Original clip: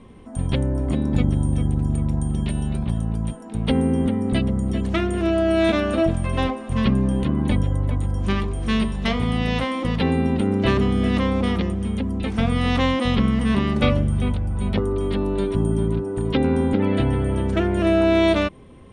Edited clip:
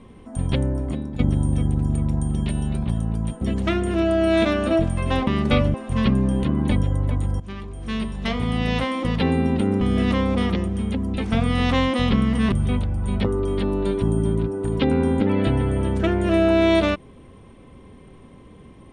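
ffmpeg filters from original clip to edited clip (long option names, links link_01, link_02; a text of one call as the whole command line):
ffmpeg -i in.wav -filter_complex "[0:a]asplit=8[link_01][link_02][link_03][link_04][link_05][link_06][link_07][link_08];[link_01]atrim=end=1.19,asetpts=PTS-STARTPTS,afade=type=out:start_time=0.65:duration=0.54:silence=0.211349[link_09];[link_02]atrim=start=1.19:end=3.412,asetpts=PTS-STARTPTS,afade=type=in:duration=0.004:curve=hsin:silence=0.211349[link_10];[link_03]atrim=start=4.678:end=6.542[link_11];[link_04]atrim=start=13.578:end=14.052[link_12];[link_05]atrim=start=6.538:end=8.2,asetpts=PTS-STARTPTS,afade=type=out:start_time=1.658:duration=0.004:curve=hsin:silence=0.158489[link_13];[link_06]atrim=start=8.2:end=10.612,asetpts=PTS-STARTPTS,afade=type=in:duration=1.3:silence=0.158489[link_14];[link_07]atrim=start=10.868:end=13.582[link_15];[link_08]atrim=start=14.048[link_16];[link_09][link_10]concat=n=2:v=0:a=1[link_17];[link_17][link_11]acrossfade=duration=0.004:curve1=hsin:curve2=hsin[link_18];[link_18][link_12]acrossfade=duration=0.004:curve1=hsin:curve2=hsin[link_19];[link_13][link_14]concat=n=2:v=0:a=1[link_20];[link_19][link_20]acrossfade=duration=0.004:curve1=hsin:curve2=hsin[link_21];[link_21][link_15]acrossfade=duration=0.004:curve1=hsin:curve2=hsin[link_22];[link_22][link_16]acrossfade=duration=0.004:curve1=hsin:curve2=hsin" out.wav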